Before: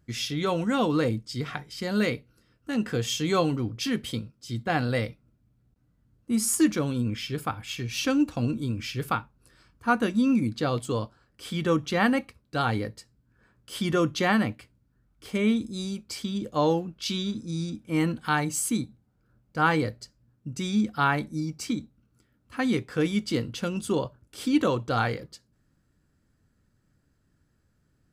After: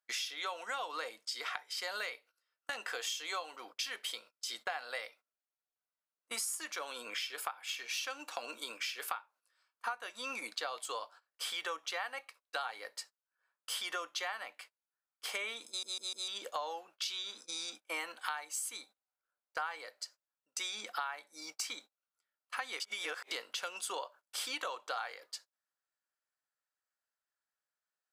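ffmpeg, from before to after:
-filter_complex "[0:a]asplit=7[a][b][c][d][e][f][g];[a]atrim=end=15.832[h];[b]atrim=start=15.678:end=15.832[i];[c]atrim=start=15.678:end=15.832[j];[d]atrim=start=15.678:end=15.832[k];[e]atrim=start=16.278:end=22.802[l];[f]atrim=start=22.798:end=23.312,asetpts=PTS-STARTPTS,areverse[m];[g]atrim=start=23.308[n];[h][i]acrossfade=d=0.004:c1=hsin:c2=hsin[o];[o][j]acrossfade=d=0.004:c1=hsin:c2=hsin[p];[p][k]acrossfade=d=0.004:c1=hsin:c2=hsin[q];[q][l]acrossfade=d=0.004:c1=hsin:c2=hsin[r];[r][m]acrossfade=d=0.004:c1=hsin:c2=hsin[s];[s][n]acrossfade=d=0.004:c1=hsin:c2=hsin,highpass=f=680:w=0.5412,highpass=f=680:w=1.3066,agate=range=-22dB:threshold=-54dB:ratio=16:detection=peak,acompressor=threshold=-43dB:ratio=10,volume=7dB"

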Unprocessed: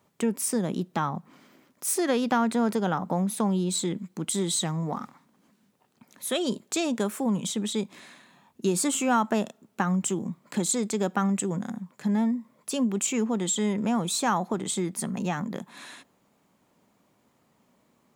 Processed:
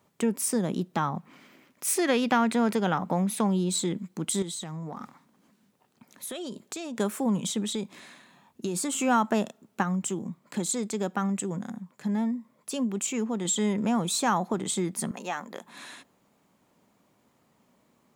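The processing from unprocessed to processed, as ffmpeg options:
-filter_complex "[0:a]asettb=1/sr,asplit=3[a][b][c];[a]atrim=end=1.164[d];[b]atrim=start=1.16:end=3.47,asetpts=PTS-STARTPTS,afade=t=in:d=0.004:c=qsin,afade=t=out:st=2.306:d=0.004:c=qsin,equalizer=f=2.4k:w=1.5:g=6.5[e];[c]atrim=start=3.466[f];[d][e]acrossfade=d=0.004:c1=hsin:c2=qsin[g];[g][f]acrossfade=d=0.004:c1=qsin:c2=hsin,asettb=1/sr,asplit=3[h][i][j];[h]atrim=end=4.424[k];[i]atrim=start=4.42:end=6.97,asetpts=PTS-STARTPTS,afade=t=in:d=0.004:c=qsin,afade=t=out:st=2.546:d=0.004:c=qsin,acompressor=threshold=-33dB:ratio=6:attack=3.2:release=140:knee=1:detection=peak[l];[j]atrim=start=6.966[m];[k][l]acrossfade=d=0.004:c1=hsin:c2=qsin[n];[n][m]acrossfade=d=0.004:c1=qsin:c2=hsin,asettb=1/sr,asplit=3[o][p][q];[o]atrim=end=7.614[r];[p]atrim=start=7.61:end=8.99,asetpts=PTS-STARTPTS,afade=t=in:d=0.004:c=qsin,afade=t=out:st=1.376:d=0.004:c=qsin,acompressor=threshold=-26dB:ratio=6:attack=3.2:release=140:knee=1:detection=peak[s];[q]atrim=start=8.986[t];[r][s]acrossfade=d=0.004:c1=hsin:c2=qsin[u];[u][t]acrossfade=d=0.004:c1=qsin:c2=hsin,asettb=1/sr,asplit=3[v][w][x];[v]atrim=end=15.114[y];[w]atrim=start=15.11:end=15.65,asetpts=PTS-STARTPTS,afade=t=in:d=0.004:c=qsin,afade=t=out:st=0.536:d=0.004:c=qsin,highpass=470[z];[x]atrim=start=15.646[aa];[y][z]acrossfade=d=0.004:c1=hsin:c2=qsin[ab];[ab][aa]acrossfade=d=0.004:c1=qsin:c2=hsin,asplit=3[ac][ad][ae];[ac]atrim=end=9.832[af];[ad]atrim=start=9.828:end=13.452,asetpts=PTS-STARTPTS,volume=-3dB[ag];[ae]atrim=start=13.448[ah];[af][ag]acrossfade=d=0.004:c1=hsin:c2=hsin[ai];[ai][ah]acrossfade=d=0.004:c1=hsin:c2=hsin"

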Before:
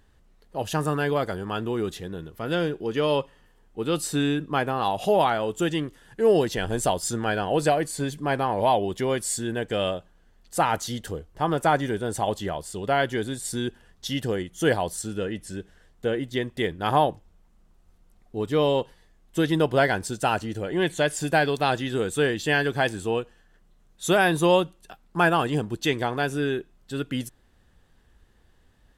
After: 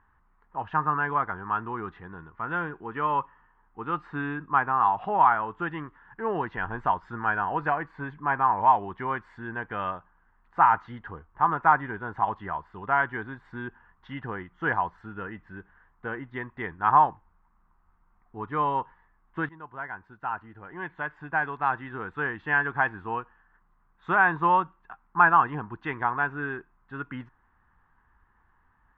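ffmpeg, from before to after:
-filter_complex "[0:a]asplit=2[a][b];[a]atrim=end=19.49,asetpts=PTS-STARTPTS,afade=t=out:st=19.486:d=0.004:c=hsin:silence=0.112202[c];[b]atrim=start=19.49,asetpts=PTS-STARTPTS,afade=t=in:d=3.35:silence=0.112202[d];[c][d]concat=n=2:v=0:a=1,lowpass=f=1.7k:w=0.5412,lowpass=f=1.7k:w=1.3066,lowshelf=f=750:t=q:w=3:g=-9.5,volume=2dB"

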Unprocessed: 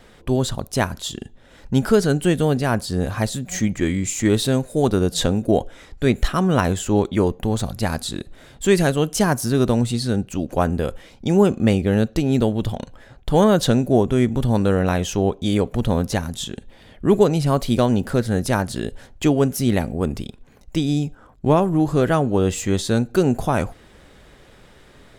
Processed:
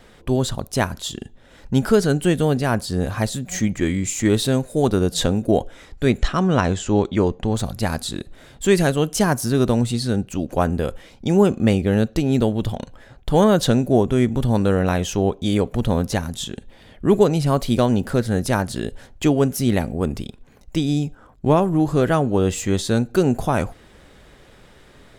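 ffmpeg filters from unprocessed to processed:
-filter_complex "[0:a]asplit=3[a][b][c];[a]afade=t=out:st=6.17:d=0.02[d];[b]lowpass=f=7.5k:w=0.5412,lowpass=f=7.5k:w=1.3066,afade=t=in:st=6.17:d=0.02,afade=t=out:st=7.53:d=0.02[e];[c]afade=t=in:st=7.53:d=0.02[f];[d][e][f]amix=inputs=3:normalize=0"

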